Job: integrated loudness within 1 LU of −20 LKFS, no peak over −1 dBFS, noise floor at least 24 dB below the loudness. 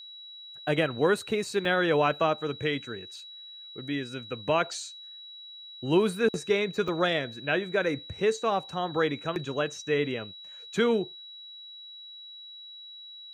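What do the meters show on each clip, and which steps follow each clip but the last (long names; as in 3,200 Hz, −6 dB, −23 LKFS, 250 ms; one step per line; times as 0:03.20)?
number of dropouts 2; longest dropout 2.0 ms; interfering tone 3,900 Hz; level of the tone −43 dBFS; integrated loudness −28.0 LKFS; sample peak −12.0 dBFS; target loudness −20.0 LKFS
→ repair the gap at 0:01.65/0:06.88, 2 ms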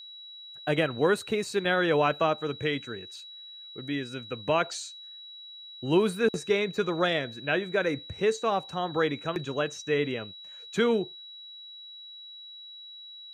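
number of dropouts 0; interfering tone 3,900 Hz; level of the tone −43 dBFS
→ notch filter 3,900 Hz, Q 30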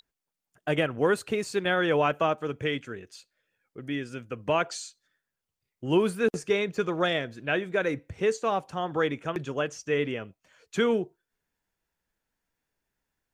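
interfering tone none found; integrated loudness −28.0 LKFS; sample peak −12.0 dBFS; target loudness −20.0 LKFS
→ level +8 dB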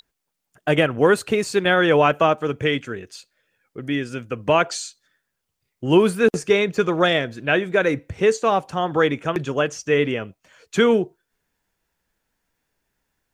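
integrated loudness −20.0 LKFS; sample peak −4.0 dBFS; background noise floor −79 dBFS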